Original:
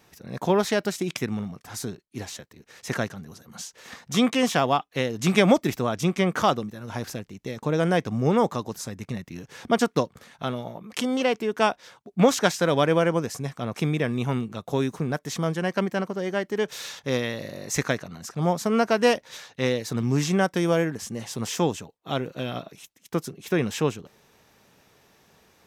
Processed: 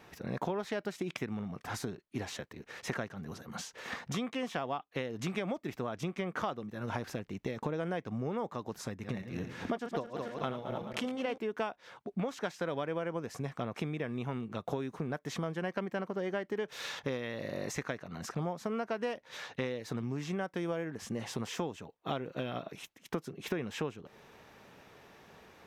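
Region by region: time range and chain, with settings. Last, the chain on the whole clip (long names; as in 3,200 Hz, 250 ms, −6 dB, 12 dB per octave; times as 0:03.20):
0:08.88–0:11.38: feedback delay that plays each chunk backwards 108 ms, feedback 68%, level −9 dB + amplitude tremolo 3.7 Hz, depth 55%
whole clip: downward compressor 12 to 1, threshold −35 dBFS; bass and treble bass −3 dB, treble −11 dB; level +4 dB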